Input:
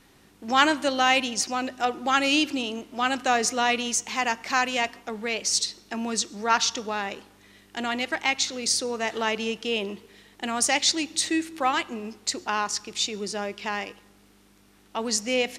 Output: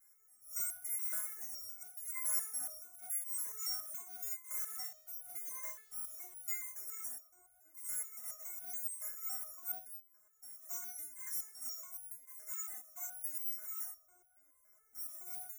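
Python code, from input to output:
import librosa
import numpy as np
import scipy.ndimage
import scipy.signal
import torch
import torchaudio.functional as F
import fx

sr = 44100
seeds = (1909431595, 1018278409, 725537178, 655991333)

p1 = fx.bit_reversed(x, sr, seeds[0], block=256)
p2 = scipy.signal.sosfilt(scipy.signal.cheby1(5, 1.0, [2200.0, 5700.0], 'bandstop', fs=sr, output='sos'), p1)
p3 = fx.low_shelf(p2, sr, hz=280.0, db=-10.0)
p4 = fx.over_compress(p3, sr, threshold_db=-32.0, ratio=-0.5)
p5 = p3 + (p4 * librosa.db_to_amplitude(-3.0))
p6 = fx.hpss(p5, sr, part='percussive', gain_db=-15)
p7 = p6 + fx.echo_wet_lowpass(p6, sr, ms=725, feedback_pct=68, hz=980.0, wet_db=-12.5, dry=0)
p8 = fx.level_steps(p7, sr, step_db=19, at=(9.77, 10.69))
p9 = fx.high_shelf(p8, sr, hz=7700.0, db=7.0)
p10 = fx.notch_comb(p9, sr, f0_hz=200.0)
p11 = fx.quant_dither(p10, sr, seeds[1], bits=8, dither='none', at=(4.63, 6.51))
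p12 = fx.resonator_held(p11, sr, hz=7.1, low_hz=210.0, high_hz=740.0)
y = p12 * librosa.db_to_amplitude(-2.5)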